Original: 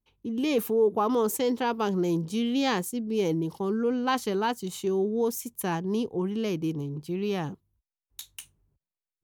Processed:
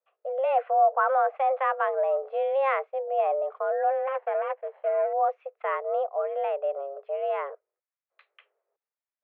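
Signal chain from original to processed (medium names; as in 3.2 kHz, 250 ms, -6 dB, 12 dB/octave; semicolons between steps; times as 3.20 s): 3.92–5.13 s: median filter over 41 samples; mistuned SSB +270 Hz 210–2100 Hz; trim +2 dB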